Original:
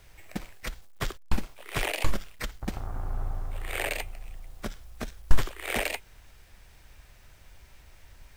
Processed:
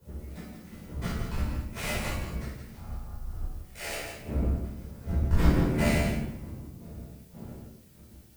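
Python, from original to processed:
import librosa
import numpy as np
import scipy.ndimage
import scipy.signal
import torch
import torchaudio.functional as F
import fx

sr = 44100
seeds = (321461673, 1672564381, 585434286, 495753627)

y = fx.dead_time(x, sr, dead_ms=0.11)
y = fx.dmg_wind(y, sr, seeds[0], corner_hz=230.0, level_db=-31.0)
y = scipy.signal.sosfilt(scipy.signal.butter(2, 42.0, 'highpass', fs=sr, output='sos'), y)
y = fx.low_shelf(y, sr, hz=120.0, db=4.0)
y = fx.hum_notches(y, sr, base_hz=50, count=6)
y = fx.comb_fb(y, sr, f0_hz=75.0, decay_s=0.41, harmonics='all', damping=0.0, mix_pct=80)
y = fx.step_gate(y, sr, bpm=148, pattern='x.xx...xx.', floor_db=-12.0, edge_ms=4.5)
y = fx.dmg_noise_colour(y, sr, seeds[1], colour='blue', level_db=-60.0)
y = y + 10.0 ** (-6.0 / 20.0) * np.pad(y, (int(169 * sr / 1000.0), 0))[:len(y)]
y = fx.room_shoebox(y, sr, seeds[2], volume_m3=550.0, walls='mixed', distance_m=4.9)
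y = fx.band_widen(y, sr, depth_pct=70)
y = y * librosa.db_to_amplitude(-6.0)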